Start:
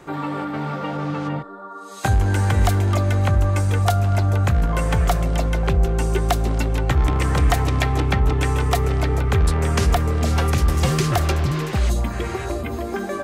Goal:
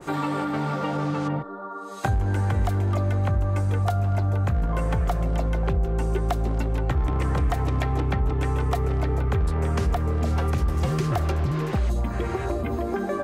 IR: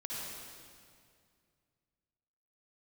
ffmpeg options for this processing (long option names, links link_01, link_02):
-af "asetnsamples=nb_out_samples=441:pad=0,asendcmd='1.28 equalizer g -3',equalizer=frequency=8700:width_type=o:width=2.2:gain=9.5,acompressor=threshold=-25dB:ratio=2.5,adynamicequalizer=threshold=0.00562:dfrequency=1600:dqfactor=0.7:tfrequency=1600:tqfactor=0.7:attack=5:release=100:ratio=0.375:range=3:mode=cutabove:tftype=highshelf,volume=2dB"